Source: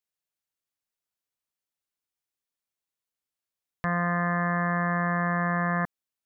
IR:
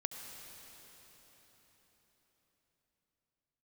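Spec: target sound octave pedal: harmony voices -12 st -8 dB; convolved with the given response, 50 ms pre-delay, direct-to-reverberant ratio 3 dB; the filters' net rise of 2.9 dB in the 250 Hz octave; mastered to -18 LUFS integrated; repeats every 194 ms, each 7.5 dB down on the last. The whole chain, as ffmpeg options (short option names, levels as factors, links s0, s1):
-filter_complex "[0:a]equalizer=f=250:t=o:g=6,aecho=1:1:194|388|582|776|970:0.422|0.177|0.0744|0.0312|0.0131,asplit=2[s0][s1];[1:a]atrim=start_sample=2205,adelay=50[s2];[s1][s2]afir=irnorm=-1:irlink=0,volume=0.708[s3];[s0][s3]amix=inputs=2:normalize=0,asplit=2[s4][s5];[s5]asetrate=22050,aresample=44100,atempo=2,volume=0.398[s6];[s4][s6]amix=inputs=2:normalize=0,volume=1.41"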